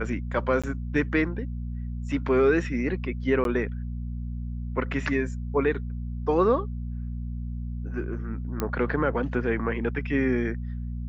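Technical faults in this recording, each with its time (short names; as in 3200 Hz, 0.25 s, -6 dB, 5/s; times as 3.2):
hum 60 Hz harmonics 4 -32 dBFS
0.62–0.64 gap 16 ms
3.44–3.45 gap 12 ms
8.6 pop -13 dBFS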